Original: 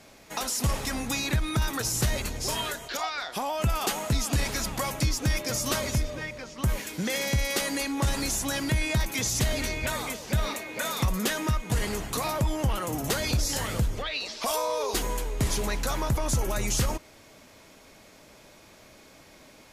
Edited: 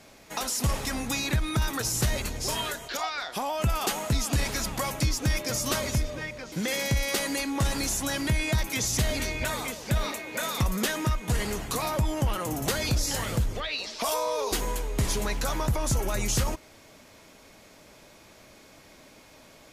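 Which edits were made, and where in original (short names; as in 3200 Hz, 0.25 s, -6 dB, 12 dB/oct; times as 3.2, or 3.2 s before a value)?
6.52–6.94 cut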